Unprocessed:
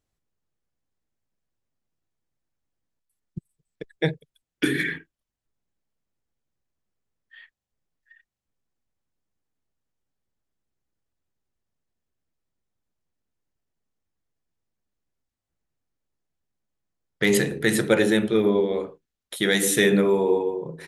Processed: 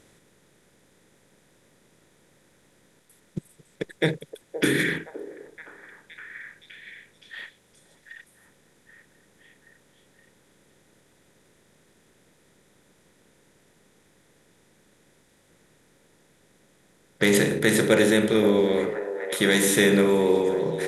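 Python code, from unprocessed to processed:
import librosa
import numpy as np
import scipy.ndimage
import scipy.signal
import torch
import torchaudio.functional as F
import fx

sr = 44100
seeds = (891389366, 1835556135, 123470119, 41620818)

y = fx.bin_compress(x, sr, power=0.6)
y = fx.echo_stepped(y, sr, ms=519, hz=580.0, octaves=0.7, feedback_pct=70, wet_db=-7)
y = y * librosa.db_to_amplitude(-2.5)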